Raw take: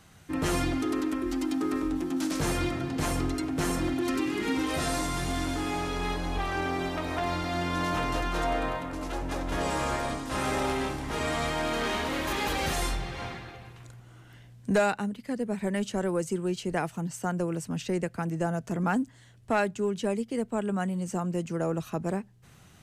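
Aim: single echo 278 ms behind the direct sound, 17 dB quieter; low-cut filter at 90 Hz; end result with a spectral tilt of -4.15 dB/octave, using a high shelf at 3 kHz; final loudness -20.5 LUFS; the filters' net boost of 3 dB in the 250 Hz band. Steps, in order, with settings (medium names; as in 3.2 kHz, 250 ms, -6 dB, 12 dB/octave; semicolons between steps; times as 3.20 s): high-pass 90 Hz; peaking EQ 250 Hz +4 dB; treble shelf 3 kHz +8 dB; delay 278 ms -17 dB; trim +7 dB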